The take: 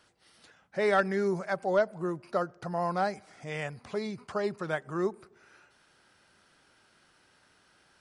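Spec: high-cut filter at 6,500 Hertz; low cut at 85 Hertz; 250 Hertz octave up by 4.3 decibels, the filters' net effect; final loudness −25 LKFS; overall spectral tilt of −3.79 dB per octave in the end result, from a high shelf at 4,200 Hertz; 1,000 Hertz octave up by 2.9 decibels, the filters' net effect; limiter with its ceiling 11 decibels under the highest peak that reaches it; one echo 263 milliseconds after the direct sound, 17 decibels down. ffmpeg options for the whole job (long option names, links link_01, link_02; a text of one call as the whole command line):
ffmpeg -i in.wav -af "highpass=85,lowpass=6500,equalizer=frequency=250:width_type=o:gain=7,equalizer=frequency=1000:width_type=o:gain=4,highshelf=frequency=4200:gain=-3.5,alimiter=limit=-22.5dB:level=0:latency=1,aecho=1:1:263:0.141,volume=8.5dB" out.wav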